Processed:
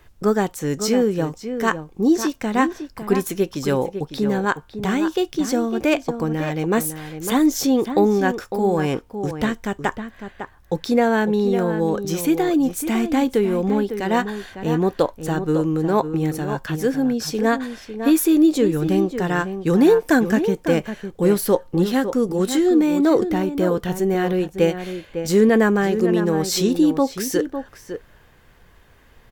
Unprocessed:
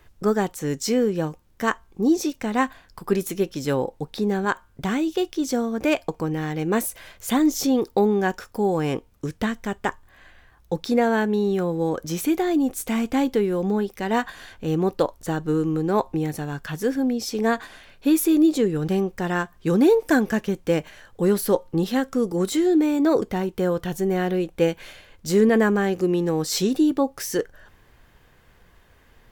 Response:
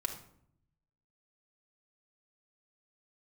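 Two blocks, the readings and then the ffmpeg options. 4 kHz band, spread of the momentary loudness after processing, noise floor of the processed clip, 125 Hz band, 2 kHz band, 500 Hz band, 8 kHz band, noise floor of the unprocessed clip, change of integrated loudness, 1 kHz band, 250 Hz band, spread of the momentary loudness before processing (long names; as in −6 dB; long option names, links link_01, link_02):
+2.5 dB, 10 LU, −51 dBFS, +3.0 dB, +3.0 dB, +3.0 dB, +2.5 dB, −56 dBFS, +3.0 dB, +3.0 dB, +3.0 dB, 9 LU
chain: -filter_complex "[0:a]asplit=2[link_01][link_02];[link_02]adelay=553.9,volume=-9dB,highshelf=frequency=4000:gain=-12.5[link_03];[link_01][link_03]amix=inputs=2:normalize=0,volume=2.5dB"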